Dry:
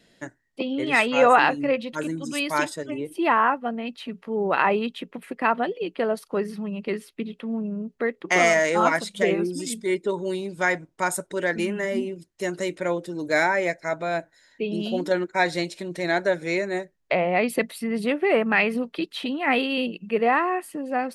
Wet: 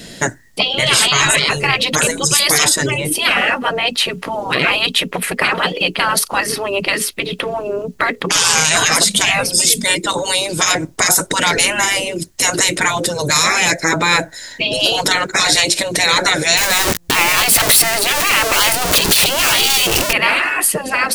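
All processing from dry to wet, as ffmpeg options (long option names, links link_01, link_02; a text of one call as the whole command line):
ffmpeg -i in.wav -filter_complex "[0:a]asettb=1/sr,asplit=3[link_01][link_02][link_03];[link_01]atrim=end=16.574[link_04];[link_02]atrim=start=16.57:end=20.13,asetpts=PTS-STARTPTS,afade=type=in:duration=0.004:curve=qsin,afade=type=out:start_time=3.556:duration=0.004:curve=qsin,aeval=exprs='val(0)+0.5*0.0355*sgn(val(0))':channel_layout=same,tremolo=f=3.8:d=0.32[link_05];[link_03]atrim=start=20.126[link_06];[link_04][link_05]acrossfade=duration=0.004:curve1=hsin:curve2=qsin[link_07];[link_07][link_06]acrossfade=duration=0.004:curve1=qsin:curve2=hsin,bass=frequency=250:gain=5,treble=frequency=4000:gain=8,afftfilt=real='re*lt(hypot(re,im),0.112)':imag='im*lt(hypot(re,im),0.112)':win_size=1024:overlap=0.75,alimiter=level_in=23.5dB:limit=-1dB:release=50:level=0:latency=1,volume=-1dB" out.wav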